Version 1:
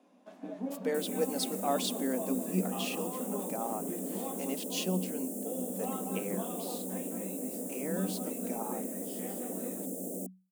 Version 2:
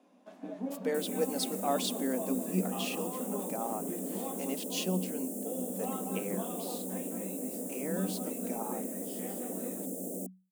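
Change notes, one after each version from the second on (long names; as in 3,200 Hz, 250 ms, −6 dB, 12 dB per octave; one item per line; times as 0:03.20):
nothing changed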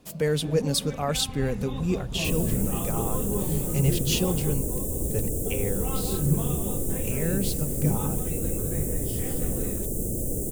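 speech: entry −0.65 s
second sound: entry +1.30 s
master: remove Chebyshev high-pass with heavy ripple 180 Hz, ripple 9 dB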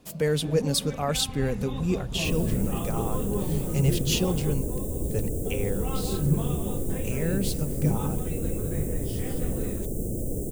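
second sound: add parametric band 14,000 Hz −8 dB 2.8 octaves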